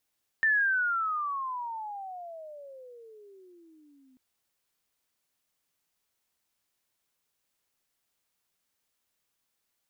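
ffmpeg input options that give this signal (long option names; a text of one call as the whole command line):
ffmpeg -f lavfi -i "aevalsrc='pow(10,(-20.5-37.5*t/3.74)/20)*sin(2*PI*1800*3.74/(-34*log(2)/12)*(exp(-34*log(2)/12*t/3.74)-1))':duration=3.74:sample_rate=44100" out.wav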